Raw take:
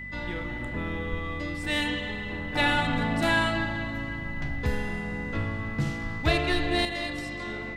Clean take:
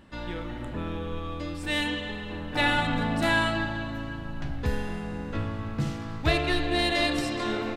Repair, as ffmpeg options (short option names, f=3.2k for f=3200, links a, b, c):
-filter_complex "[0:a]bandreject=f=48:t=h:w=4,bandreject=f=96:t=h:w=4,bandreject=f=144:t=h:w=4,bandreject=f=192:t=h:w=4,bandreject=f=240:t=h:w=4,bandreject=f=2k:w=30,asplit=3[a][b][c];[a]afade=t=out:st=1.1:d=0.02[d];[b]highpass=f=140:w=0.5412,highpass=f=140:w=1.3066,afade=t=in:st=1.1:d=0.02,afade=t=out:st=1.22:d=0.02[e];[c]afade=t=in:st=1.22:d=0.02[f];[d][e][f]amix=inputs=3:normalize=0,asplit=3[g][h][i];[g]afade=t=out:st=6.02:d=0.02[j];[h]highpass=f=140:w=0.5412,highpass=f=140:w=1.3066,afade=t=in:st=6.02:d=0.02,afade=t=out:st=6.14:d=0.02[k];[i]afade=t=in:st=6.14:d=0.02[l];[j][k][l]amix=inputs=3:normalize=0,asetnsamples=n=441:p=0,asendcmd='6.85 volume volume 8dB',volume=0dB"